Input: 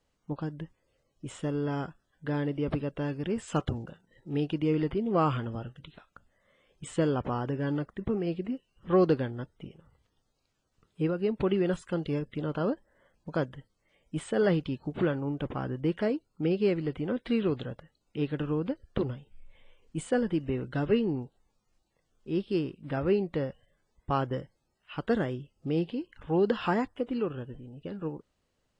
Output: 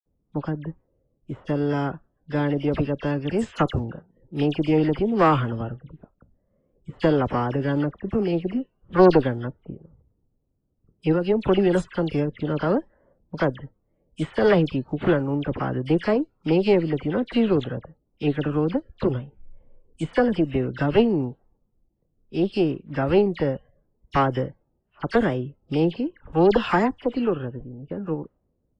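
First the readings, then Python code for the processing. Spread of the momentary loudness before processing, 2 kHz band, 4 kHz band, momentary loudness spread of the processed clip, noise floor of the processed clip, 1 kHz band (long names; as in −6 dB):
14 LU, +8.5 dB, +7.5 dB, 14 LU, −72 dBFS, +9.0 dB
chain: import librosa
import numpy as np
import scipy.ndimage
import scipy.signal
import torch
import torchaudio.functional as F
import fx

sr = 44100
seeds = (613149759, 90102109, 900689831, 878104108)

y = fx.cheby_harmonics(x, sr, harmonics=(2,), levels_db=(-9,), full_scale_db=-13.0)
y = fx.env_lowpass(y, sr, base_hz=330.0, full_db=-26.5)
y = fx.dispersion(y, sr, late='lows', ms=60.0, hz=2300.0)
y = y * 10.0 ** (7.5 / 20.0)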